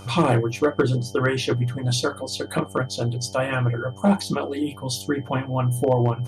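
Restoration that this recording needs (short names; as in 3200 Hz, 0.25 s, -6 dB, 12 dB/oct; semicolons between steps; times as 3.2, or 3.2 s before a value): clip repair -10.5 dBFS; de-hum 96.9 Hz, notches 9; notch 3100 Hz, Q 30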